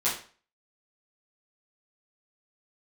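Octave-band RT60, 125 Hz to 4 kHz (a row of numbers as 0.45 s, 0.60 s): 0.40 s, 0.40 s, 0.40 s, 0.40 s, 0.40 s, 0.35 s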